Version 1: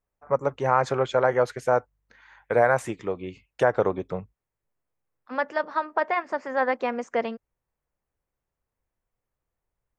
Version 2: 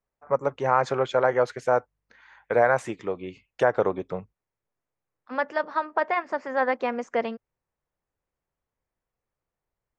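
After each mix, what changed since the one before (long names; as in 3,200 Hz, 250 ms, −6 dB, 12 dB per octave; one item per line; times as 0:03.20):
first voice: add low-shelf EQ 81 Hz −11 dB
master: add low-pass filter 7,400 Hz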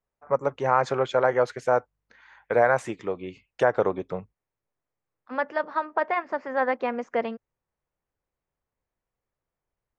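second voice: add high-frequency loss of the air 120 metres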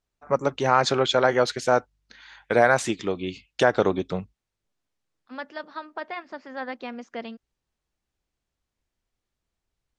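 first voice +11.0 dB
master: add octave-band graphic EQ 125/500/1,000/2,000/4,000 Hz −7/−9/−8/−6/+7 dB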